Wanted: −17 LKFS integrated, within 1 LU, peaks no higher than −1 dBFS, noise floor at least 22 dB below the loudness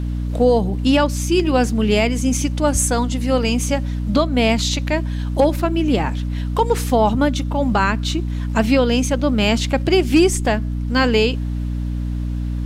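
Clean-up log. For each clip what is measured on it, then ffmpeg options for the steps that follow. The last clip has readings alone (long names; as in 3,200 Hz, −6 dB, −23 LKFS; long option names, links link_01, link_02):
mains hum 60 Hz; hum harmonics up to 300 Hz; level of the hum −20 dBFS; integrated loudness −18.5 LKFS; sample peak −4.5 dBFS; target loudness −17.0 LKFS
→ -af "bandreject=frequency=60:width_type=h:width=4,bandreject=frequency=120:width_type=h:width=4,bandreject=frequency=180:width_type=h:width=4,bandreject=frequency=240:width_type=h:width=4,bandreject=frequency=300:width_type=h:width=4"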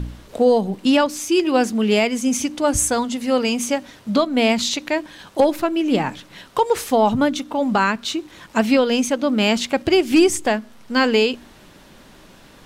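mains hum none found; integrated loudness −19.0 LKFS; sample peak −5.0 dBFS; target loudness −17.0 LKFS
→ -af "volume=2dB"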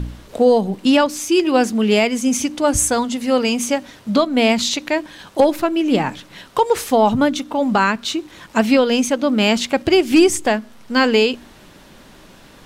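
integrated loudness −17.0 LKFS; sample peak −3.0 dBFS; background noise floor −45 dBFS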